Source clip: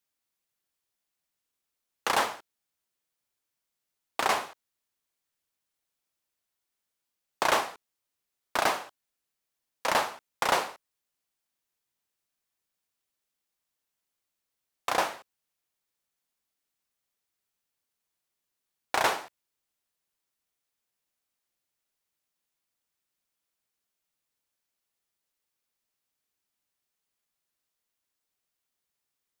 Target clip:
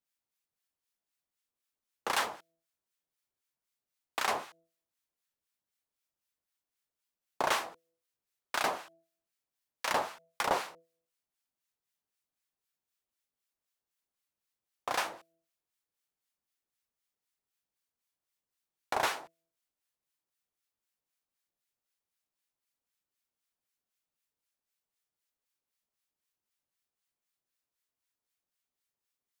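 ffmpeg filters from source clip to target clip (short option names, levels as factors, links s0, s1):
-filter_complex "[0:a]bandreject=f=165.5:t=h:w=4,bandreject=f=331:t=h:w=4,bandreject=f=496.5:t=h:w=4,bandreject=f=662:t=h:w=4,atempo=1,acrossover=split=1100[s0][s1];[s0]aeval=exprs='val(0)*(1-0.7/2+0.7/2*cos(2*PI*3.9*n/s))':c=same[s2];[s1]aeval=exprs='val(0)*(1-0.7/2-0.7/2*cos(2*PI*3.9*n/s))':c=same[s3];[s2][s3]amix=inputs=2:normalize=0,volume=0.841"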